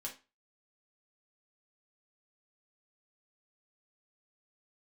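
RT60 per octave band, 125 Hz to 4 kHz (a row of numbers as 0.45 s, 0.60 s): 0.30 s, 0.30 s, 0.25 s, 0.30 s, 0.30 s, 0.25 s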